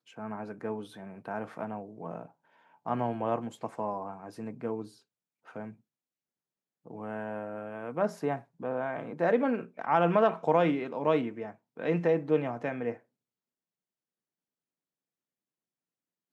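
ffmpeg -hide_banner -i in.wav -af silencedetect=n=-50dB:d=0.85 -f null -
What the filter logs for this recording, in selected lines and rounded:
silence_start: 5.74
silence_end: 6.86 | silence_duration: 1.12
silence_start: 12.99
silence_end: 16.32 | silence_duration: 3.33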